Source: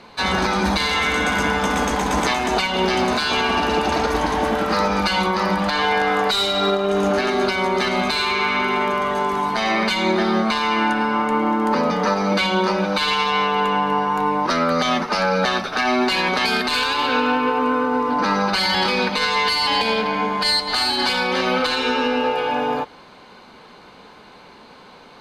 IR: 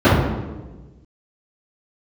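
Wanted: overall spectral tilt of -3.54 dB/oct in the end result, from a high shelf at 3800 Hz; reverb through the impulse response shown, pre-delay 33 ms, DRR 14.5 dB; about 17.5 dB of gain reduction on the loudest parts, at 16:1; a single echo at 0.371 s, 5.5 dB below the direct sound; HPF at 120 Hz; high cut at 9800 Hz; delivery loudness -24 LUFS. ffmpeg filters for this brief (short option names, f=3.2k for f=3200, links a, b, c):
-filter_complex "[0:a]highpass=120,lowpass=9.8k,highshelf=f=3.8k:g=3.5,acompressor=threshold=-33dB:ratio=16,aecho=1:1:371:0.531,asplit=2[a][b];[1:a]atrim=start_sample=2205,adelay=33[c];[b][c]afir=irnorm=-1:irlink=0,volume=-42dB[d];[a][d]amix=inputs=2:normalize=0,volume=10.5dB"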